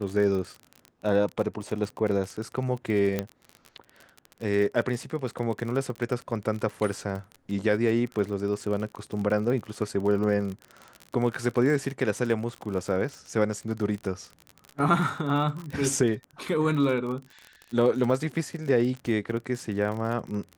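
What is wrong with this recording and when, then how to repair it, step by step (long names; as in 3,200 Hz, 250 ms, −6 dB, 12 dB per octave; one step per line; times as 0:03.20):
surface crackle 38 per second −32 dBFS
0:03.19: click −13 dBFS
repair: click removal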